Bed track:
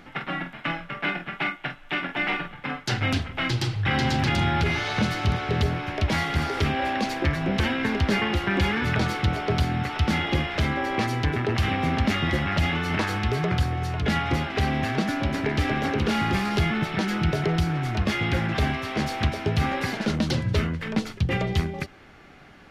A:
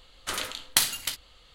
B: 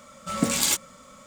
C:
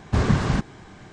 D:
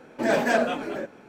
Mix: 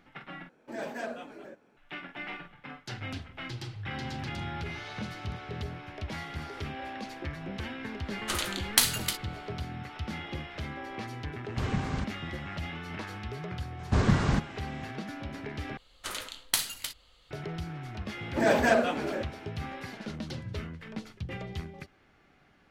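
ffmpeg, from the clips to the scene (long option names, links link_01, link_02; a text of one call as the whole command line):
ffmpeg -i bed.wav -i cue0.wav -i cue1.wav -i cue2.wav -i cue3.wav -filter_complex "[4:a]asplit=2[link_01][link_02];[1:a]asplit=2[link_03][link_04];[3:a]asplit=2[link_05][link_06];[0:a]volume=-13.5dB,asplit=3[link_07][link_08][link_09];[link_07]atrim=end=0.494[link_10];[link_01]atrim=end=1.28,asetpts=PTS-STARTPTS,volume=-15dB[link_11];[link_08]atrim=start=1.766:end=15.774[link_12];[link_04]atrim=end=1.54,asetpts=PTS-STARTPTS,volume=-5.5dB[link_13];[link_09]atrim=start=17.306[link_14];[link_03]atrim=end=1.54,asetpts=PTS-STARTPTS,volume=-0.5dB,afade=type=in:duration=0.1,afade=type=out:start_time=1.44:duration=0.1,adelay=8010[link_15];[link_05]atrim=end=1.12,asetpts=PTS-STARTPTS,volume=-11.5dB,afade=type=in:duration=0.004:curve=hsin,afade=type=out:start_time=1.116:duration=0.004:curve=hsin,adelay=11440[link_16];[link_06]atrim=end=1.12,asetpts=PTS-STARTPTS,volume=-4dB,afade=type=in:duration=0.004:curve=hsin,afade=type=out:start_time=1.116:duration=0.004:curve=hsin,adelay=13790[link_17];[link_02]atrim=end=1.28,asetpts=PTS-STARTPTS,volume=-1.5dB,afade=type=in:duration=0.004:curve=hsin,afade=type=out:start_time=1.276:duration=0.004:curve=hsin,adelay=18170[link_18];[link_10][link_11]acrossfade=duration=0.004:curve1=hsin:curve2=hsin[link_19];[link_19][link_12]acrossfade=duration=0.004:curve1=hsin:curve2=hsin[link_20];[link_20][link_13]acrossfade=duration=0.004:curve1=hsin:curve2=hsin[link_21];[link_21][link_14]acrossfade=duration=0.004:curve1=hsin:curve2=hsin[link_22];[link_22][link_15][link_16][link_17][link_18]amix=inputs=5:normalize=0" out.wav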